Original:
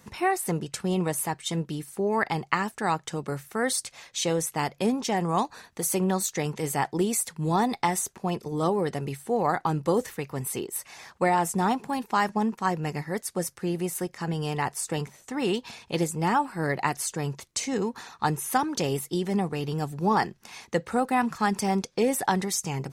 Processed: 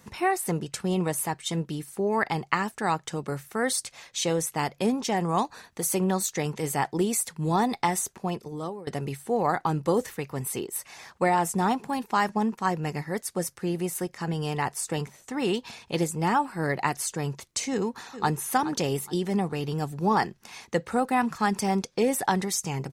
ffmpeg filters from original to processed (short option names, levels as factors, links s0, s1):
-filter_complex "[0:a]asplit=2[s0][s1];[s1]afade=t=in:st=17.71:d=0.01,afade=t=out:st=18.31:d=0.01,aecho=0:1:420|840|1260:0.237137|0.0711412|0.0213424[s2];[s0][s2]amix=inputs=2:normalize=0,asplit=2[s3][s4];[s3]atrim=end=8.87,asetpts=PTS-STARTPTS,afade=t=out:st=8.18:d=0.69:silence=0.0944061[s5];[s4]atrim=start=8.87,asetpts=PTS-STARTPTS,afade=t=in:d=0.004:c=hsin:silence=0.0944061[s6];[s5][s6]concat=n=2:v=0:a=1"